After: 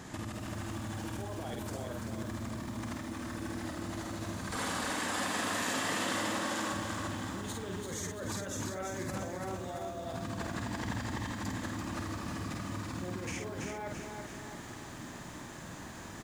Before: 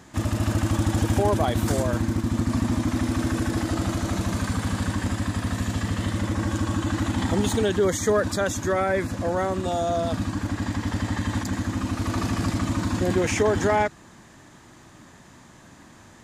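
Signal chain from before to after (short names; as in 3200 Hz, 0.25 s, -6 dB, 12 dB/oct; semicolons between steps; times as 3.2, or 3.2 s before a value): 4.51–6.73 HPF 440 Hz 12 dB/oct; limiter -21 dBFS, peak gain reduction 10.5 dB; negative-ratio compressor -36 dBFS, ratio -1; doubler 50 ms -4 dB; lo-fi delay 0.337 s, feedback 55%, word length 9-bit, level -4.5 dB; gain -4.5 dB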